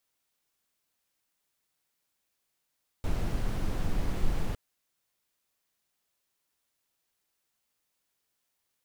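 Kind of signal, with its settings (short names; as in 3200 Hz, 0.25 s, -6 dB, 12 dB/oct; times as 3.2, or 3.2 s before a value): noise brown, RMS -27 dBFS 1.51 s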